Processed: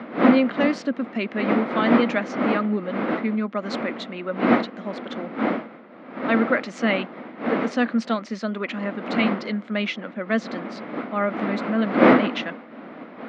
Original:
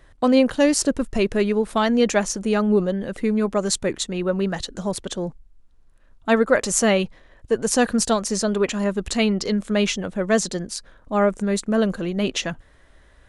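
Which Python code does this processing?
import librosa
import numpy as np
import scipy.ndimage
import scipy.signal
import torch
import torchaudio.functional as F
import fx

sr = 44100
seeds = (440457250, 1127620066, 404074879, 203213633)

y = fx.dmg_wind(x, sr, seeds[0], corner_hz=530.0, level_db=-20.0)
y = fx.cabinet(y, sr, low_hz=220.0, low_slope=24, high_hz=3900.0, hz=(230.0, 400.0, 880.0, 1300.0, 2100.0), db=(7, -7, -4, 5, 8))
y = y * librosa.db_to_amplitude(-4.5)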